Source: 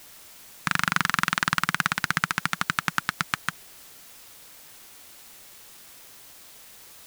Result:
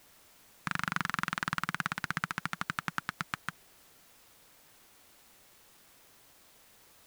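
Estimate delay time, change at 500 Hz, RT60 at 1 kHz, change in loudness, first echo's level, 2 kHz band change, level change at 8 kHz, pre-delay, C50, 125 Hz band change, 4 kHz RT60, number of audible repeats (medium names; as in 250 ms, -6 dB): no echo, -7.5 dB, no reverb, -9.5 dB, no echo, -9.5 dB, -13.0 dB, no reverb, no reverb, -7.0 dB, no reverb, no echo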